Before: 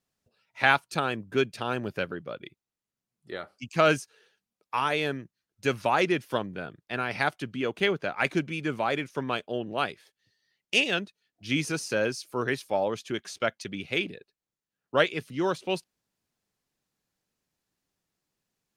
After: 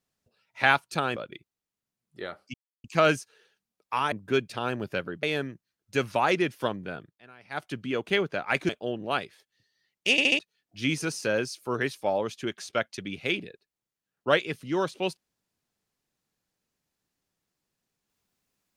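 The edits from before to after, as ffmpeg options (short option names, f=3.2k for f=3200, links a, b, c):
-filter_complex "[0:a]asplit=12[a][b][c][d][e][f][g][h][i][j][k][l];[a]atrim=end=1.162[m];[b]atrim=start=2.268:end=3.65,asetpts=PTS-STARTPTS,afade=t=out:st=1.378:d=0.004:c=hsin,apad=pad_dur=0.3[n];[c]atrim=start=3.65:end=4.932,asetpts=PTS-STARTPTS,afade=t=in:d=0.004:c=hsin[o];[d]atrim=start=1.158:end=2.272[p];[e]atrim=start=4.928:end=6.91,asetpts=PTS-STARTPTS,afade=t=out:st=1.742:d=0.24:c=qsin:silence=0.0891251[q];[f]atrim=start=6.91:end=7.2,asetpts=PTS-STARTPTS,volume=-21dB[r];[g]atrim=start=7.2:end=8.392,asetpts=PTS-STARTPTS,afade=t=in:d=0.24:c=qsin:silence=0.0891251[s];[h]atrim=start=9.358:end=10.852[t];[i]atrim=start=10.778:end=10.852[u];[j]atrim=start=10.778:end=10.852[v];[k]atrim=start=10.778:end=10.852[w];[l]atrim=start=11.058[x];[n][o]concat=n=2:v=0:a=1[y];[m][y]acrossfade=d=0.004:c1=hsin:c2=hsin[z];[z][p]acrossfade=d=0.004:c1=hsin:c2=hsin[aa];[q][r][s]concat=n=3:v=0:a=1[ab];[aa][ab]acrossfade=d=0.004:c1=hsin:c2=hsin[ac];[ac][t]acrossfade=d=0.004:c1=hsin:c2=hsin[ad];[ad][u]acrossfade=d=0.004:c1=hsin:c2=hsin[ae];[ae][v]acrossfade=d=0.004:c1=hsin:c2=hsin[af];[af][w]acrossfade=d=0.004:c1=hsin:c2=hsin[ag];[ag][x]acrossfade=d=0.004:c1=hsin:c2=hsin"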